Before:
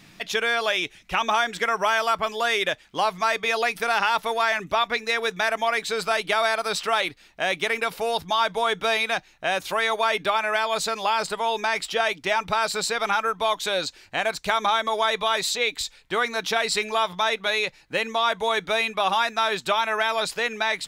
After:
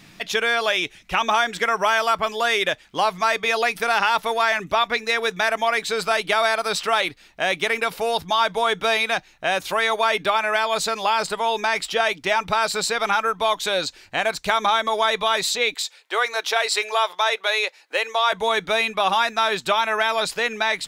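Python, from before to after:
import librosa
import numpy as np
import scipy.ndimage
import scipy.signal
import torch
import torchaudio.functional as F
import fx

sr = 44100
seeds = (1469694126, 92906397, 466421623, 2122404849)

y = fx.highpass(x, sr, hz=420.0, slope=24, at=(15.74, 18.33))
y = F.gain(torch.from_numpy(y), 2.5).numpy()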